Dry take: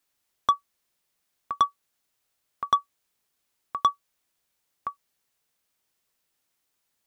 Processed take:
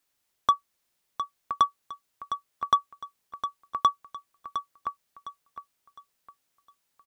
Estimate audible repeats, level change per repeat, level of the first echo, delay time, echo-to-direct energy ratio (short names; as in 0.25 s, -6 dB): 3, -9.5 dB, -10.0 dB, 0.709 s, -9.5 dB